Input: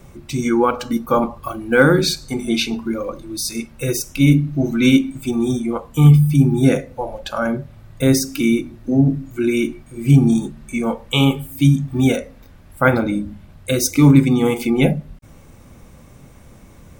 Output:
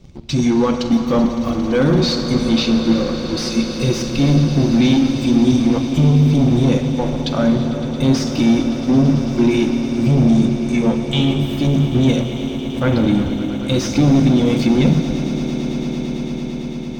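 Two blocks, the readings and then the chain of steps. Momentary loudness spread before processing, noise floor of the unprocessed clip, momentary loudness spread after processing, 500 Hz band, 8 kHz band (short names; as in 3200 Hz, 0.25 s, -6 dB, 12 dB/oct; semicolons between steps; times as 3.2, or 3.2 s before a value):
12 LU, -44 dBFS, 8 LU, +0.5 dB, -4.5 dB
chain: EQ curve 200 Hz 0 dB, 1600 Hz -13 dB, 4400 Hz +10 dB; sample leveller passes 2; limiter -7 dBFS, peak gain reduction 10 dB; soft clip -11.5 dBFS, distortion -16 dB; air absorption 220 m; on a send: swelling echo 0.112 s, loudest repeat 8, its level -17 dB; on the sum: non-linear reverb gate 0.42 s flat, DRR 8 dB; gain +3 dB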